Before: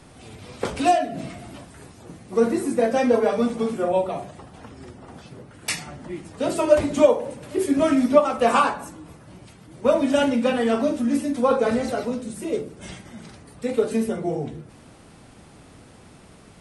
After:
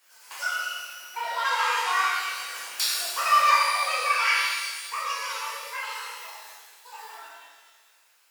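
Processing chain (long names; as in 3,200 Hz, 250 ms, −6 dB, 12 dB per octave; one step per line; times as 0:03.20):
source passing by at 0:05.22, 7 m/s, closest 6.9 metres
treble cut that deepens with the level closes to 2,700 Hz, closed at −28.5 dBFS
high-pass filter 610 Hz 12 dB per octave
spectral tilt +2 dB per octave
notch filter 1,800 Hz, Q 12
wrong playback speed 7.5 ips tape played at 15 ips
reverb with rising layers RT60 1.5 s, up +12 semitones, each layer −8 dB, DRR −9 dB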